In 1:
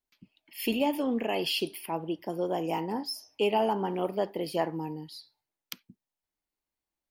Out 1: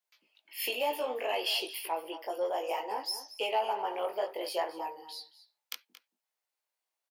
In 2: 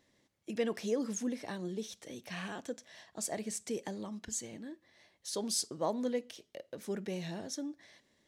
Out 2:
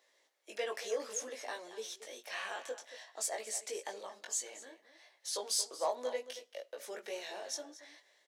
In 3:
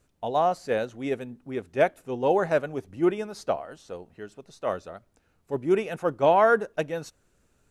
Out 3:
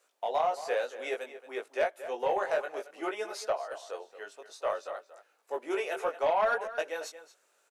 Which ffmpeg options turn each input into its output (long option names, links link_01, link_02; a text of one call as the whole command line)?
ffmpeg -i in.wav -filter_complex "[0:a]highpass=frequency=500:width=0.5412,highpass=frequency=500:width=1.3066,acompressor=threshold=-31dB:ratio=2,flanger=delay=18:depth=2.5:speed=0.6,asoftclip=type=tanh:threshold=-24.5dB,asplit=2[link_01][link_02];[link_02]adelay=227.4,volume=-13dB,highshelf=frequency=4000:gain=-5.12[link_03];[link_01][link_03]amix=inputs=2:normalize=0,volume=5.5dB" out.wav